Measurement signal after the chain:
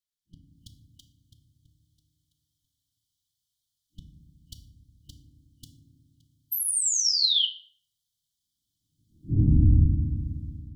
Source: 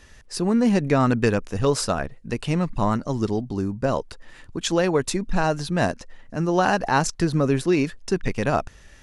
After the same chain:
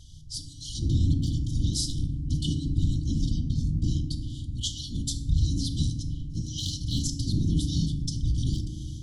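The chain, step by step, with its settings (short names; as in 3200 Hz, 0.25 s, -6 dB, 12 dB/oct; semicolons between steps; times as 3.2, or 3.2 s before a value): one-sided fold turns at -12.5 dBFS; AGC gain up to 11.5 dB; FFT band-reject 160–3000 Hz; compressor 2:1, threshold -29 dBFS; whisperiser; high shelf 7500 Hz -9 dB; FDN reverb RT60 1.8 s, low-frequency decay 1.4×, high-frequency decay 0.25×, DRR 5.5 dB; harmonic-percussive split percussive -6 dB; bell 200 Hz -6 dB 0.95 oct; gain +5.5 dB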